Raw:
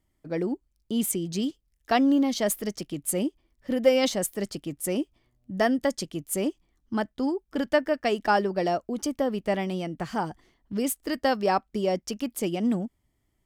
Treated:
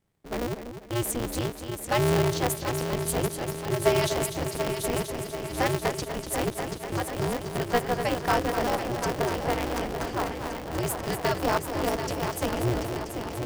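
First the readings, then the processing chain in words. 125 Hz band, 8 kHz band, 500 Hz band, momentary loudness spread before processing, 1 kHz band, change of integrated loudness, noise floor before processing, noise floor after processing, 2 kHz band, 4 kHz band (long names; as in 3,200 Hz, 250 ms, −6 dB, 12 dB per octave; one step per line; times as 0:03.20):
+8.0 dB, 0.0 dB, −0.5 dB, 10 LU, +1.0 dB, −1.0 dB, −74 dBFS, −39 dBFS, +1.5 dB, +1.0 dB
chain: echo machine with several playback heads 245 ms, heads first and third, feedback 73%, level −9 dB
ring modulator with a square carrier 120 Hz
level −2.5 dB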